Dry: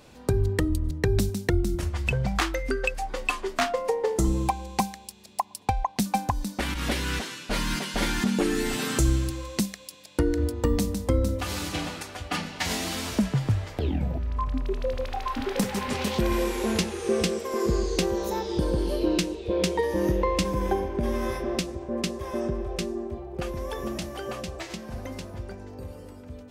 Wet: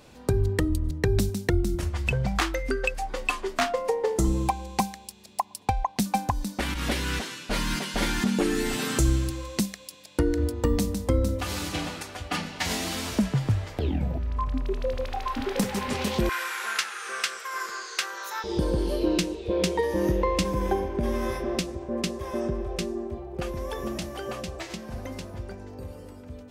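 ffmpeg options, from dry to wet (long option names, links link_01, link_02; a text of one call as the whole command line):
ffmpeg -i in.wav -filter_complex "[0:a]asettb=1/sr,asplit=3[link_01][link_02][link_03];[link_01]atrim=end=16.294[link_04];[link_02]atrim=start=16.29:end=18.44,asetpts=PTS-STARTPTS,afade=type=in:duration=0.004:curve=qsin,afade=type=out:start_time=2.146:duration=0.004:curve=qsin,highpass=frequency=1400:width_type=q:width=4.3[link_05];[link_03]atrim=start=18.436[link_06];[link_04][link_05]acrossfade=duration=0.004:curve1=hsin:curve2=qsin[link_07];[link_07][link_06]acrossfade=duration=0.004:curve1=qsin:curve2=hsin" out.wav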